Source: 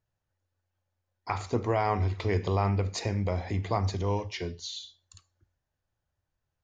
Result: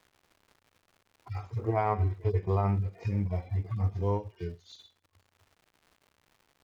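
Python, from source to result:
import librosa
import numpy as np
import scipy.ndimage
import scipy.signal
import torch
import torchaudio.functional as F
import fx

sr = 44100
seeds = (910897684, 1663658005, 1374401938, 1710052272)

y = fx.hpss_only(x, sr, part='harmonic')
y = fx.dmg_crackle(y, sr, seeds[0], per_s=250.0, level_db=-46.0)
y = fx.high_shelf(y, sr, hz=3300.0, db=-10.5)
y = fx.transient(y, sr, attack_db=3, sustain_db=-6)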